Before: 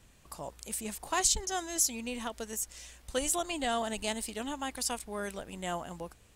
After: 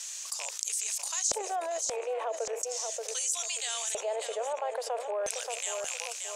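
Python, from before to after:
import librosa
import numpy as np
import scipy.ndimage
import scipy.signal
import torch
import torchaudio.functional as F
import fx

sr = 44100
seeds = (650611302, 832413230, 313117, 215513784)

p1 = fx.rattle_buzz(x, sr, strikes_db=-47.0, level_db=-34.0)
p2 = scipy.signal.sosfilt(scipy.signal.ellip(4, 1.0, 50, 450.0, 'highpass', fs=sr, output='sos'), p1)
p3 = fx.level_steps(p2, sr, step_db=24)
p4 = p2 + (p3 * librosa.db_to_amplitude(2.5))
p5 = fx.filter_lfo_bandpass(p4, sr, shape='square', hz=0.38, low_hz=580.0, high_hz=6300.0, q=3.2)
p6 = fx.echo_feedback(p5, sr, ms=580, feedback_pct=21, wet_db=-13.5)
y = fx.env_flatten(p6, sr, amount_pct=70)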